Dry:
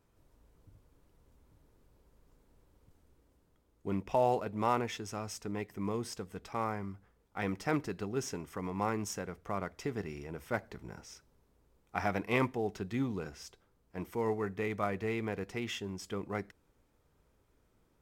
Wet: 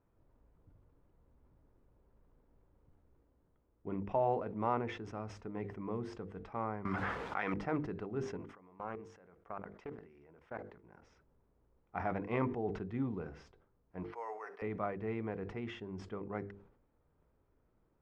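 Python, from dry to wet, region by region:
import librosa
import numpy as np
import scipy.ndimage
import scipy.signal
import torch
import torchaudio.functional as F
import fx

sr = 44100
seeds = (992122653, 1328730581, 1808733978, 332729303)

y = fx.chain(x, sr, fx.highpass(hz=100.0, slope=12),
    fx.tilt_shelf(db=-10.0, hz=750.0),
    fx.env_flatten(amount_pct=100), at=(6.85, 7.54))
y = fx.chain(y, sr, fx.low_shelf(hz=250.0, db=-10.5),
    fx.level_steps(step_db=19),
    fx.doppler_dist(depth_ms=0.37), at=(8.37, 11.02))
y = fx.chain(y, sr, fx.highpass(hz=600.0, slope=24),
    fx.high_shelf(hz=4100.0, db=7.5),
    fx.resample_bad(factor=6, down='filtered', up='hold'), at=(14.03, 14.62))
y = scipy.signal.sosfilt(scipy.signal.bessel(2, 1300.0, 'lowpass', norm='mag', fs=sr, output='sos'), y)
y = fx.hum_notches(y, sr, base_hz=50, count=10)
y = fx.sustainer(y, sr, db_per_s=86.0)
y = y * 10.0 ** (-2.5 / 20.0)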